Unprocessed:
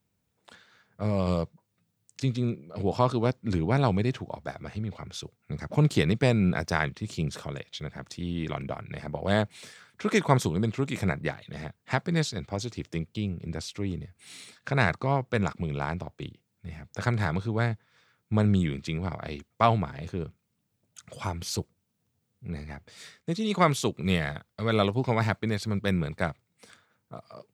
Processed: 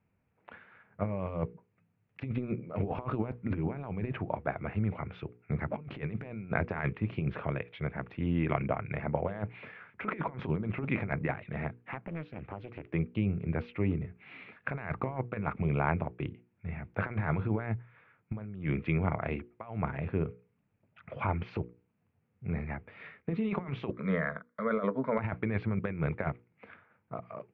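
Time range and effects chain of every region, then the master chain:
11.81–12.9 compressor 4:1, threshold -40 dBFS + Doppler distortion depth 0.78 ms
23.9–25.19 HPF 240 Hz 6 dB/oct + fixed phaser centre 530 Hz, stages 8 + mismatched tape noise reduction encoder only
whole clip: elliptic low-pass 2500 Hz, stop band 80 dB; negative-ratio compressor -30 dBFS, ratio -0.5; notches 60/120/180/240/300/360/420/480 Hz

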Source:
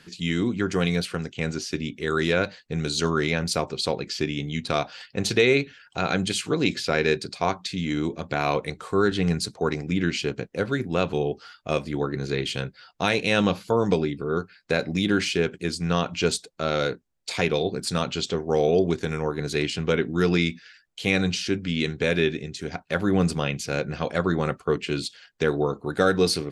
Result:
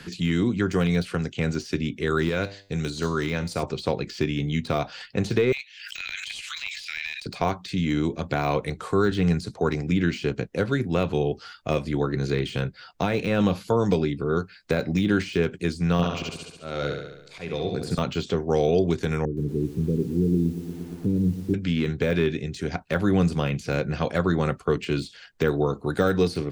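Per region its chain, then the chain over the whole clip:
2.29–3.63 high shelf 4000 Hz +10.5 dB + resonator 99 Hz, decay 0.44 s, mix 50%
5.52–7.26 steep high-pass 2100 Hz + backwards sustainer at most 65 dB/s
15.92–17.98 auto swell 0.532 s + flutter echo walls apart 11.8 m, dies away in 0.76 s
19.25–21.54 inverse Chebyshev low-pass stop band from 750 Hz + lo-fi delay 0.117 s, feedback 80%, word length 8-bit, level -14 dB
whole clip: de-esser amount 90%; low shelf 120 Hz +7.5 dB; three-band squash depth 40%

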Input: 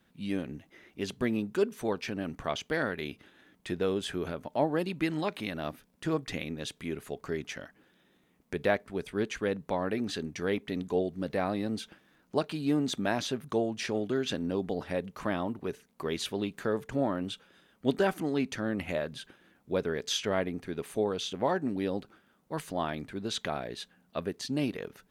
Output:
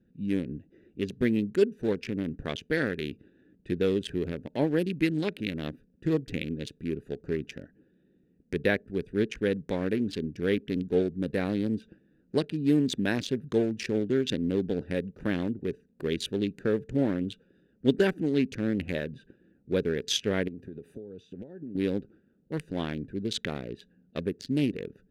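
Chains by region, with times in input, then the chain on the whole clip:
20.48–21.75 HPF 51 Hz 24 dB/oct + high shelf 7800 Hz +8.5 dB + compressor 16:1, threshold -39 dBFS
whole clip: Wiener smoothing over 41 samples; band shelf 890 Hz -11 dB 1.3 oct; gain +5 dB

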